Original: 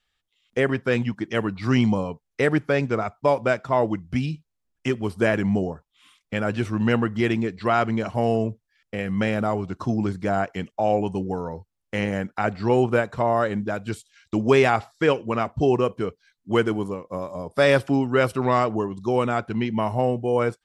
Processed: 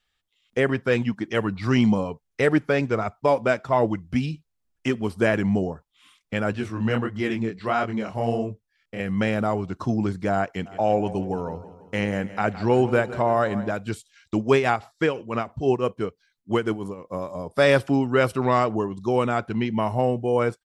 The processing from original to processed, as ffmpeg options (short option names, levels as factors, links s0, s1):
-filter_complex "[0:a]asplit=3[s0][s1][s2];[s0]afade=t=out:st=0.87:d=0.02[s3];[s1]aphaser=in_gain=1:out_gain=1:delay=5:decay=0.25:speed=1.3:type=triangular,afade=t=in:st=0.87:d=0.02,afade=t=out:st=5.14:d=0.02[s4];[s2]afade=t=in:st=5.14:d=0.02[s5];[s3][s4][s5]amix=inputs=3:normalize=0,asettb=1/sr,asplit=3[s6][s7][s8];[s6]atrim=end=6.534[s9];[s7]atrim=start=6.53:end=9,asetpts=PTS-STARTPTS,afade=t=in:d=0.004:c=qsin,afade=t=out:st=2.466:d=0.004:c=qsin,flanger=delay=20:depth=7.4:speed=1.5[s10];[s8]atrim=start=8.996[s11];[s9][s10]acrossfade=d=0.004:c1=hsin:c2=qsin[s12];[s12][s11]acrossfade=d=0.004:c1=qsin:c2=hsin,asplit=3[s13][s14][s15];[s13]afade=t=out:st=10.65:d=0.02[s16];[s14]aecho=1:1:165|330|495|660|825:0.168|0.0907|0.049|0.0264|0.0143,afade=t=in:st=10.65:d=0.02,afade=t=out:st=13.71:d=0.02[s17];[s15]afade=t=in:st=13.71:d=0.02[s18];[s16][s17][s18]amix=inputs=3:normalize=0,asettb=1/sr,asplit=3[s19][s20][s21];[s19]atrim=end=14.374[s22];[s20]atrim=start=14.37:end=17.08,asetpts=PTS-STARTPTS,afade=t=in:d=0.004:c=qsin,afade=t=out:st=2.706:d=0.004:c=qsin,tremolo=f=6:d=0.63[s23];[s21]atrim=start=17.076[s24];[s22][s23]acrossfade=d=0.004:c1=hsin:c2=qsin[s25];[s25][s24]acrossfade=d=0.004:c1=qsin:c2=hsin"